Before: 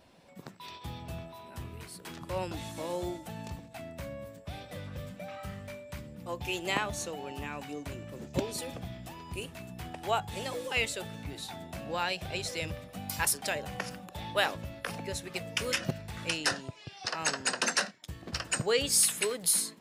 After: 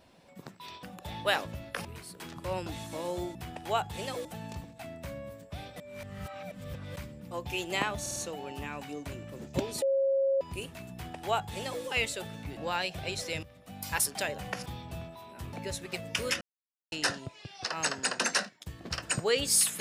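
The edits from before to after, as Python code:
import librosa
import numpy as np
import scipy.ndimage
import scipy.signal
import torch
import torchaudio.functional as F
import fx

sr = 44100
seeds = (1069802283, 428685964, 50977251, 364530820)

y = fx.edit(x, sr, fx.swap(start_s=0.83, length_s=0.87, other_s=13.93, other_length_s=1.02),
    fx.reverse_span(start_s=4.75, length_s=1.16),
    fx.stutter(start_s=6.96, slice_s=0.05, count=4),
    fx.bleep(start_s=8.62, length_s=0.59, hz=543.0, db=-23.5),
    fx.duplicate(start_s=9.73, length_s=0.9, to_s=3.2),
    fx.cut(start_s=11.37, length_s=0.47),
    fx.fade_in_from(start_s=12.7, length_s=0.59, floor_db=-16.5),
    fx.silence(start_s=15.83, length_s=0.51), tone=tone)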